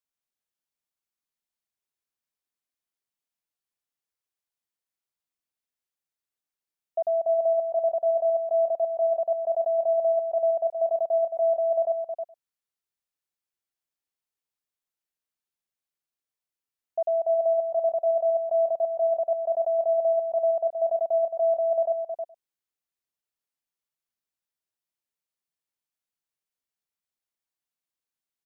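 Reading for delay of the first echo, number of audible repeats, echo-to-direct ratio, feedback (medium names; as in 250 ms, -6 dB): 104 ms, 3, -6.0 dB, no regular repeats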